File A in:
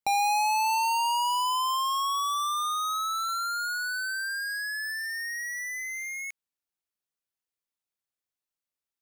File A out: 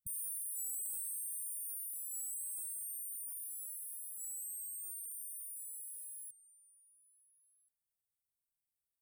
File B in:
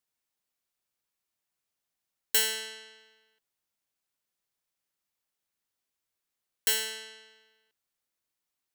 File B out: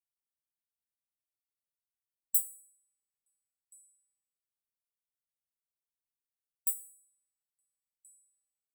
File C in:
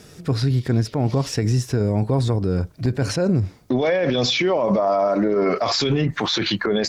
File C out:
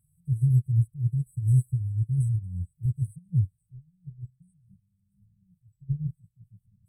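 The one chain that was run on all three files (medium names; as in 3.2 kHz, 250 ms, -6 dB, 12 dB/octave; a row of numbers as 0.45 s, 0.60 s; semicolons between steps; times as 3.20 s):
brick-wall FIR band-stop 170–7800 Hz; repeats whose band climbs or falls 459 ms, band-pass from 900 Hz, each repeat 1.4 oct, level -7 dB; upward expansion 2.5:1, over -31 dBFS; trim +1.5 dB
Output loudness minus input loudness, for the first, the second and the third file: -12.5 LU, -4.0 LU, -6.5 LU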